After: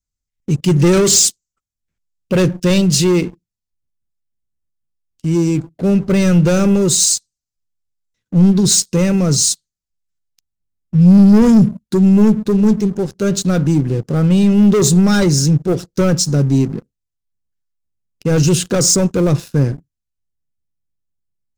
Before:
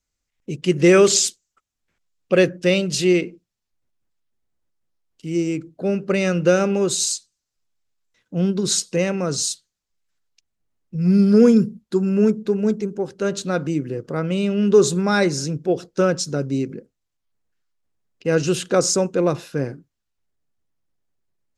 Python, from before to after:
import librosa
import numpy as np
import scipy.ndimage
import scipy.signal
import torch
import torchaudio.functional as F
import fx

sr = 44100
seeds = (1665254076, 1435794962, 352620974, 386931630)

y = fx.leveller(x, sr, passes=3)
y = fx.bass_treble(y, sr, bass_db=13, treble_db=8)
y = y * librosa.db_to_amplitude(-8.0)